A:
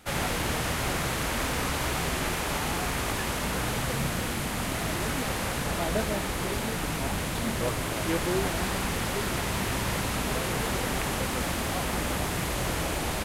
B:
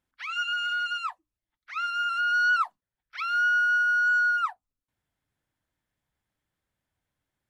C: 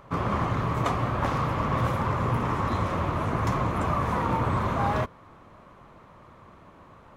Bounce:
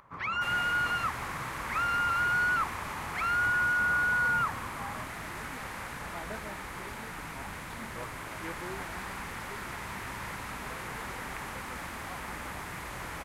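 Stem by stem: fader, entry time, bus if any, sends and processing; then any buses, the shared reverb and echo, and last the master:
-13.5 dB, 0.35 s, no send, none
-5.0 dB, 0.00 s, no send, peak limiter -27 dBFS, peak gain reduction 10 dB
-19.5 dB, 0.00 s, no send, none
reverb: none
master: high-order bell 1.4 kHz +8 dB; upward compressor, threshold -52 dBFS

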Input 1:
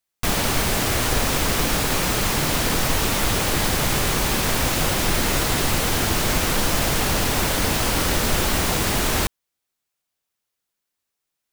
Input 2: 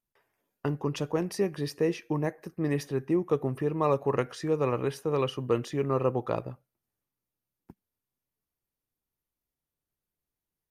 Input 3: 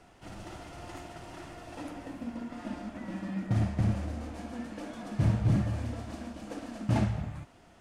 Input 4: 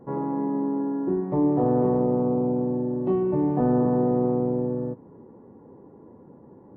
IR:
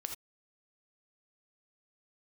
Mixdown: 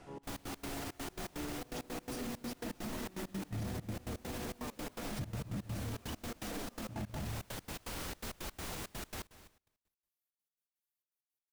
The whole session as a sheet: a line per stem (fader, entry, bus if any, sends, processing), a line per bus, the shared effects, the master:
-19.5 dB, 0.00 s, no send, echo send -18 dB, none
-15.0 dB, 0.80 s, no send, no echo send, tilt EQ +3.5 dB/octave
+0.5 dB, 0.00 s, no send, echo send -10 dB, none
-18.0 dB, 0.00 s, no send, no echo send, none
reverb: none
echo: feedback delay 204 ms, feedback 22%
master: trance gate "xx.x.x.x" 166 bpm -24 dB; peak limiter -31.5 dBFS, peak gain reduction 16.5 dB

